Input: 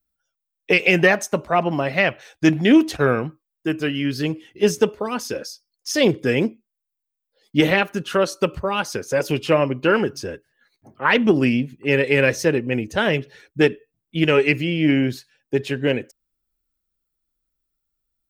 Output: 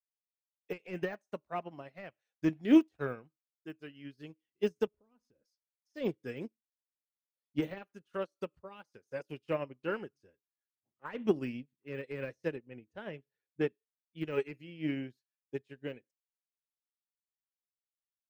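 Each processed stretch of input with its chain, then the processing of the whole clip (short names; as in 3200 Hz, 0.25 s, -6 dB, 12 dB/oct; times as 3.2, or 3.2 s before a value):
4.87–5.46 tilt -3.5 dB/oct + compressor 4:1, threshold -30 dBFS
12.56–13.69 HPF 41 Hz + high shelf 3600 Hz -11.5 dB
whole clip: de-esser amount 80%; upward expander 2.5:1, over -33 dBFS; gain -7.5 dB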